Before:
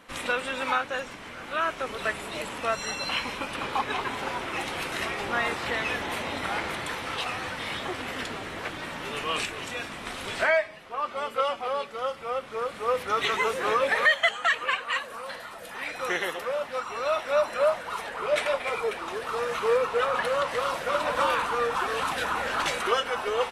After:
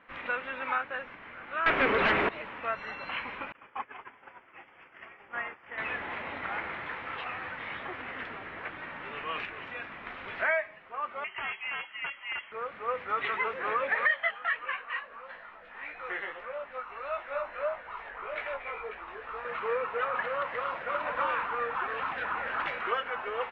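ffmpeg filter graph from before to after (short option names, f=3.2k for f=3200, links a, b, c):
-filter_complex "[0:a]asettb=1/sr,asplit=3[a][b][c];[a]atrim=end=1.664[d];[b]atrim=start=1.66:end=2.29,asetpts=PTS-STARTPTS,afade=t=in:d=0.004:c=qsin,afade=t=out:st=0.626:d=0.004:c=qsin,equalizer=f=360:t=o:w=1.3:g=6.5,aeval=exprs='0.2*sin(PI/2*4.47*val(0)/0.2)':c=same[e];[c]atrim=start=2.286[f];[d][e]acrossfade=d=0.004:c1=hsin:c2=qsin[g];[g][f]acrossfade=d=0.004:c1=qsin:c2=hsin,asettb=1/sr,asplit=3[h][i][j];[h]atrim=end=3.524[k];[i]atrim=start=3.52:end=5.78,asetpts=PTS-STARTPTS,afade=t=in:d=0.004:c=qsin,afade=t=out:st=2.256:d=0.004:c=qsin,agate=range=-33dB:threshold=-22dB:ratio=3:release=100:detection=peak,asuperstop=centerf=4000:order=8:qfactor=3.5,lowshelf=f=150:g=-4[l];[j]atrim=start=5.776[m];[k][l]acrossfade=d=0.004:c1=hsin:c2=qsin[n];[n][m]acrossfade=d=0.004:c1=qsin:c2=hsin,asettb=1/sr,asplit=3[o][p][q];[o]atrim=end=11.244[r];[p]atrim=start=11.24:end=12.52,asetpts=PTS-STARTPTS,afade=t=in:d=0.004:c=qsin,afade=t=out:st=1.276:d=0.004:c=qsin,equalizer=f=130:t=o:w=1.2:g=6,aeval=exprs='(mod(11.9*val(0)+1,2)-1)/11.9':c=same,lowpass=f=2.8k:t=q:w=0.5098,lowpass=f=2.8k:t=q:w=0.6013,lowpass=f=2.8k:t=q:w=0.9,lowpass=f=2.8k:t=q:w=2.563,afreqshift=-3300[s];[q]atrim=start=12.516[t];[r][s]acrossfade=d=0.004:c1=hsin:c2=qsin[u];[u][t]acrossfade=d=0.004:c1=qsin:c2=hsin,asettb=1/sr,asplit=3[v][w][x];[v]atrim=end=14.074[y];[w]atrim=start=14.07:end=19.45,asetpts=PTS-STARTPTS,afade=t=in:d=0.004:c=qsin,afade=t=out:st=5.376:d=0.004:c=qsin,asubboost=boost=8:cutoff=51,flanger=delay=17:depth=3:speed=1.6[z];[x]atrim=start=19.446[aa];[y][z]acrossfade=d=0.004:c1=hsin:c2=qsin[ab];[ab][aa]acrossfade=d=0.004:c1=qsin:c2=hsin,lowpass=f=2.2k:w=0.5412,lowpass=f=2.2k:w=1.3066,tiltshelf=f=1.2k:g=-6,volume=-4dB"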